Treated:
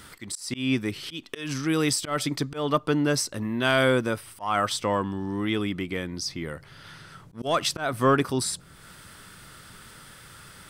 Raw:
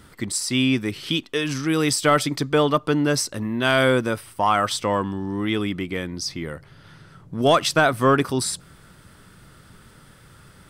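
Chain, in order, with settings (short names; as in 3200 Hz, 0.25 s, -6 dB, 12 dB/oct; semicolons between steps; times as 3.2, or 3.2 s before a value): auto swell 0.187 s; mismatched tape noise reduction encoder only; gain -3 dB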